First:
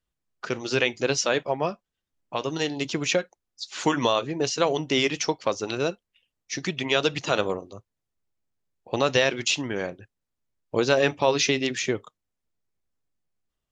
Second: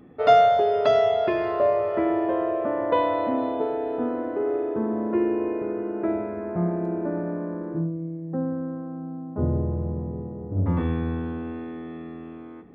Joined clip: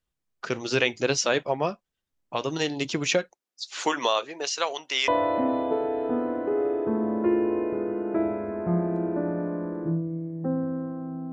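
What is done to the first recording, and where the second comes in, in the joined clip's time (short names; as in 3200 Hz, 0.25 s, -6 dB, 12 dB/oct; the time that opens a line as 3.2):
first
3.34–5.08 HPF 260 Hz -> 1100 Hz
5.08 switch to second from 2.97 s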